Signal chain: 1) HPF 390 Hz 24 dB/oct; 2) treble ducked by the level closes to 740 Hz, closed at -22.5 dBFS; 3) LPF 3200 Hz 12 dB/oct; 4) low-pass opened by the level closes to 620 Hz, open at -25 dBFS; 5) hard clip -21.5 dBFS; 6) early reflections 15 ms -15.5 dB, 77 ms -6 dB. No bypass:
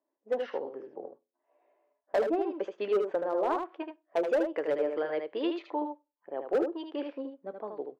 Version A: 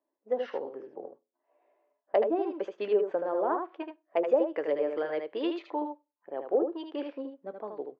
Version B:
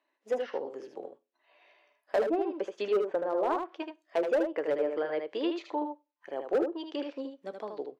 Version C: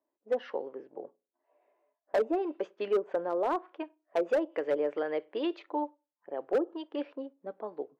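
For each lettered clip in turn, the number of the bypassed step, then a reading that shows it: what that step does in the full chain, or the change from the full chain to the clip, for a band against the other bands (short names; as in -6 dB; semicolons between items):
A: 5, distortion -14 dB; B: 4, 4 kHz band +2.0 dB; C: 6, crest factor change -3.0 dB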